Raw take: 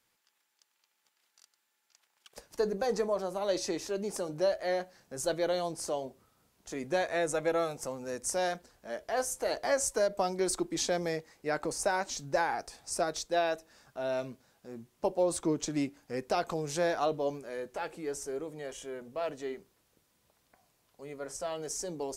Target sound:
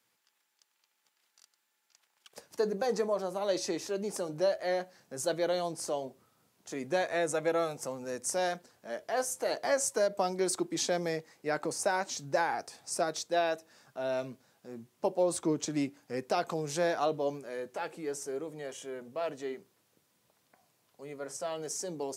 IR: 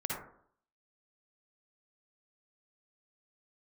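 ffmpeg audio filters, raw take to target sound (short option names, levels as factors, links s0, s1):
-af "highpass=f=100:w=0.5412,highpass=f=100:w=1.3066"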